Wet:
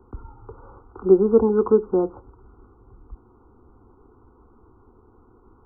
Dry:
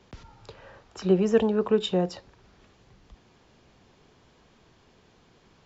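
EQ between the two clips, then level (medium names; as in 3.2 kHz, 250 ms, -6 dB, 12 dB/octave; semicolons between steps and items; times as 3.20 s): brick-wall FIR low-pass 1.5 kHz; bass shelf 320 Hz +8 dB; static phaser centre 610 Hz, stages 6; +5.0 dB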